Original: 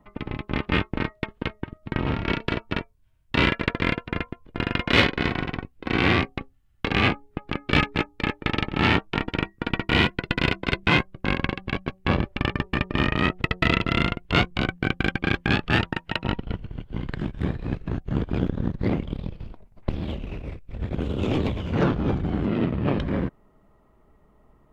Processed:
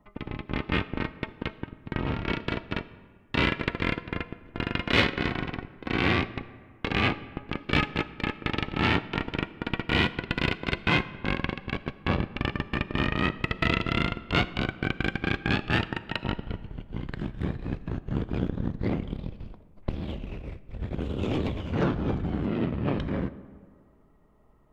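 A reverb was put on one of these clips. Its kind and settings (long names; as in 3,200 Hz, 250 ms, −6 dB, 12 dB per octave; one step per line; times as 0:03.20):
comb and all-pass reverb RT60 1.9 s, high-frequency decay 0.5×, pre-delay 0 ms, DRR 15 dB
level −4 dB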